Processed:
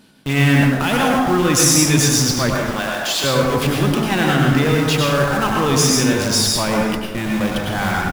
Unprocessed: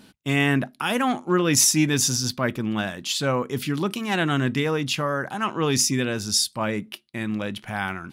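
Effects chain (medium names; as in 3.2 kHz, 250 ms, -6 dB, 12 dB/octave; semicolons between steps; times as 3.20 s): in parallel at -3 dB: Schmitt trigger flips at -34.5 dBFS; 2.55–3.24 s: on the sum: high-pass 470 Hz 12 dB/octave; delay 398 ms -23.5 dB; plate-style reverb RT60 1.1 s, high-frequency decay 0.55×, pre-delay 85 ms, DRR -1.5 dB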